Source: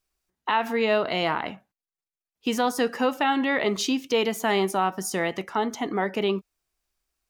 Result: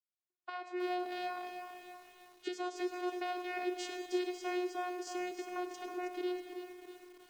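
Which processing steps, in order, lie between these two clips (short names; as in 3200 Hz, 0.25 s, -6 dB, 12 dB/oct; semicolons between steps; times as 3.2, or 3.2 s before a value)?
opening faded in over 0.93 s; recorder AGC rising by 19 dB/s; HPF 220 Hz 6 dB/oct; high shelf 2500 Hz +9.5 dB; resonator 290 Hz, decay 0.97 s, mix 70%; in parallel at -4 dB: soft clip -21 dBFS, distortion -21 dB; on the sum: vocoder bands 8, saw 360 Hz; on a send: thin delay 0.101 s, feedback 75%, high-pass 3000 Hz, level -14 dB; on the sum: digital reverb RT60 3.7 s, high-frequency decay 0.5×, pre-delay 70 ms, DRR 10 dB; lo-fi delay 0.321 s, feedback 55%, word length 8-bit, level -8 dB; gain -8 dB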